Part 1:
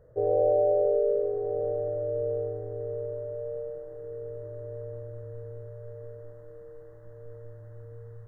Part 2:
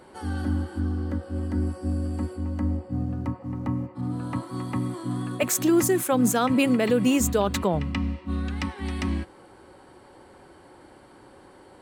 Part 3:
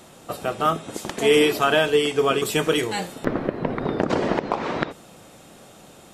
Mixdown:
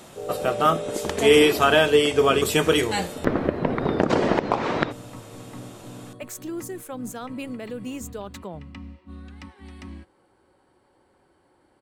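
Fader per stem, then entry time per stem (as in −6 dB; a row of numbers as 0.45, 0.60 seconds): −7.5, −12.5, +1.5 decibels; 0.00, 0.80, 0.00 seconds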